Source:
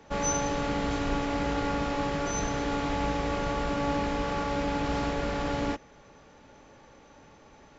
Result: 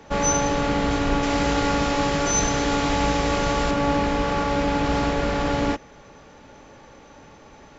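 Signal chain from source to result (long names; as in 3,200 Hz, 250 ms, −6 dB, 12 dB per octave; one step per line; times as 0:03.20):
0:01.23–0:03.71: high-shelf EQ 4,100 Hz +9 dB
level +7 dB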